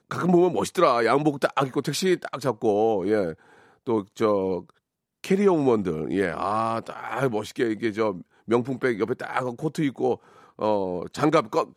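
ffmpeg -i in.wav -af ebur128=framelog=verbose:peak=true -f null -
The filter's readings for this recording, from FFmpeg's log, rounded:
Integrated loudness:
  I:         -24.5 LUFS
  Threshold: -34.8 LUFS
Loudness range:
  LRA:         3.7 LU
  Threshold: -45.4 LUFS
  LRA low:   -26.9 LUFS
  LRA high:  -23.2 LUFS
True peak:
  Peak:       -5.7 dBFS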